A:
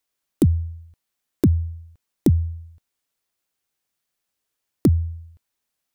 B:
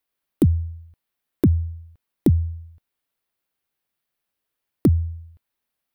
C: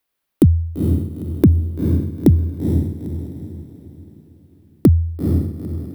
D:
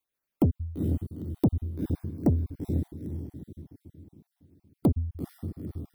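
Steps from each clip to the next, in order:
parametric band 6,800 Hz −9.5 dB 1 octave
feedback delay with all-pass diffusion 459 ms, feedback 41%, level −4.5 dB; level +5 dB
time-frequency cells dropped at random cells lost 32%; saturating transformer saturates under 230 Hz; level −9 dB

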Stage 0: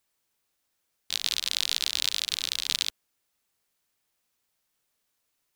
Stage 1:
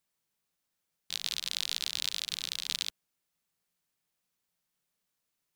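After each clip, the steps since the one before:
parametric band 170 Hz +11 dB 0.42 octaves
level −6 dB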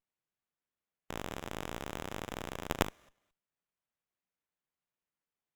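four-comb reverb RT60 0.77 s, combs from 33 ms, DRR 17 dB
output level in coarse steps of 16 dB
windowed peak hold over 9 samples
level +2.5 dB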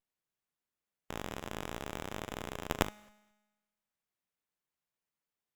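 tuned comb filter 210 Hz, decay 1.2 s, mix 50%
level +5.5 dB

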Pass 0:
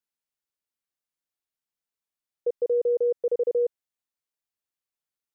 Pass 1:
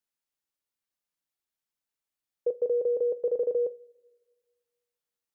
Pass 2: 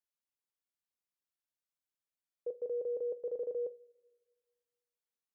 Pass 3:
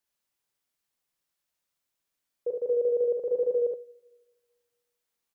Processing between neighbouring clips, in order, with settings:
coupled-rooms reverb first 0.25 s, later 1.6 s, from −22 dB, DRR 12.5 dB
brickwall limiter −23.5 dBFS, peak gain reduction 4 dB; level −8 dB
multi-tap delay 46/53/71 ms −9/−10/−3.5 dB; level +8 dB

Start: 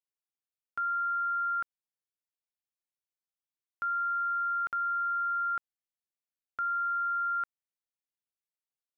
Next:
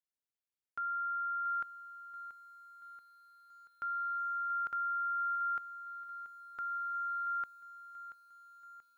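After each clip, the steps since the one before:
feedback echo at a low word length 682 ms, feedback 55%, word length 10 bits, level −13.5 dB
level −5.5 dB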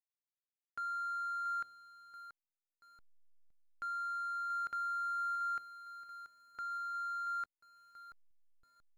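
parametric band 1,000 Hz −4.5 dB 0.85 octaves
hum removal 99.54 Hz, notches 8
slack as between gear wheels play −47 dBFS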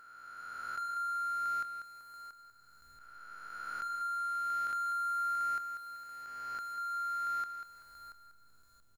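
peak hold with a rise ahead of every peak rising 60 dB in 2.53 s
high-shelf EQ 4,300 Hz +11.5 dB
repeating echo 192 ms, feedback 38%, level −9 dB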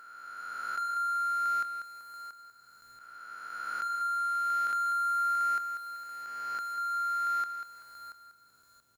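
high-pass filter 250 Hz 6 dB per octave
level +5 dB

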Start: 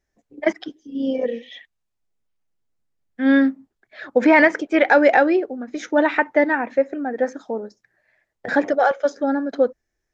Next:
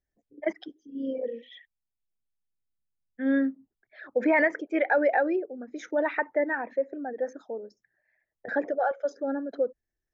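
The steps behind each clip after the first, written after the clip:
spectral envelope exaggerated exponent 1.5
level −9 dB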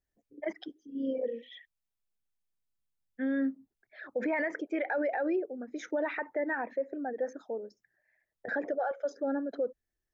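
brickwall limiter −22.5 dBFS, peak gain reduction 9.5 dB
level −1 dB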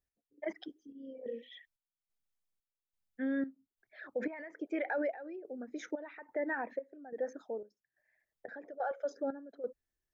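gate pattern "x....xxxxx" 179 BPM −12 dB
level −3 dB

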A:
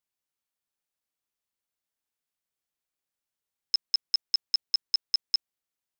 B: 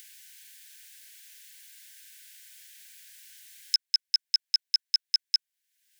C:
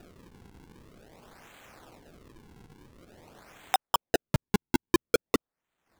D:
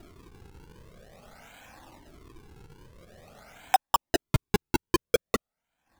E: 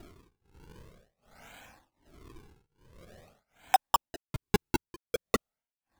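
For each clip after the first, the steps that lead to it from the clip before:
Chebyshev high-pass filter 1,500 Hz, order 10; upward compression, threshold −25 dBFS; level +2 dB
transient designer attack 0 dB, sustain −6 dB; sample-and-hold swept by an LFO 41×, swing 160% 0.48 Hz; level −1.5 dB
speech leveller; flanger whose copies keep moving one way rising 0.48 Hz; level +6.5 dB
amplitude tremolo 1.3 Hz, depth 98%

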